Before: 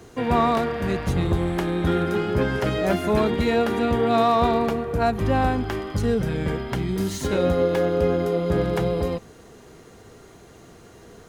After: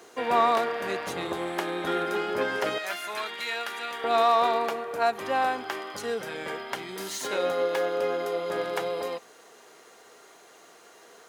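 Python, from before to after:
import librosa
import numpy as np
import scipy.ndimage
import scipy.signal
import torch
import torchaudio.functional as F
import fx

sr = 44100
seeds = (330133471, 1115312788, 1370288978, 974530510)

y = fx.highpass(x, sr, hz=fx.steps((0.0, 490.0), (2.78, 1400.0), (4.04, 620.0)), slope=12)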